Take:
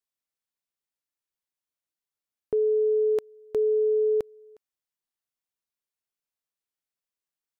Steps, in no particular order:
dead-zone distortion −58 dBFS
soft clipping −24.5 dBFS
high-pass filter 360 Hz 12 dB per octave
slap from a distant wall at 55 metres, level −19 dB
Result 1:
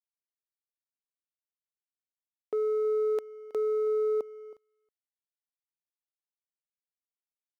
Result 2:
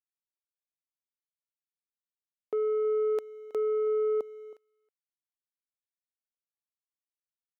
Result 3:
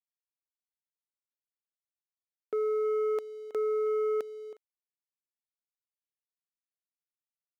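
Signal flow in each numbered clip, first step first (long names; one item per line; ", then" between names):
high-pass filter, then dead-zone distortion, then soft clipping, then slap from a distant wall
dead-zone distortion, then high-pass filter, then soft clipping, then slap from a distant wall
slap from a distant wall, then dead-zone distortion, then soft clipping, then high-pass filter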